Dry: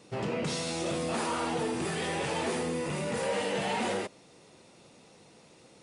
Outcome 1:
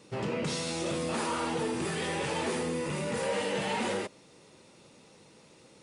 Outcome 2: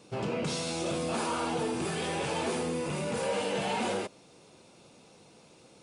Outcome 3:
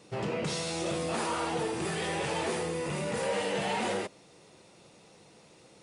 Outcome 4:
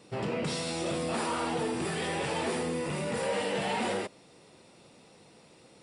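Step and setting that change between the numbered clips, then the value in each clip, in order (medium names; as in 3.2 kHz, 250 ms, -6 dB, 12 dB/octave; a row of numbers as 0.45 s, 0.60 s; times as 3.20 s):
band-stop, frequency: 710 Hz, 1.9 kHz, 250 Hz, 6.4 kHz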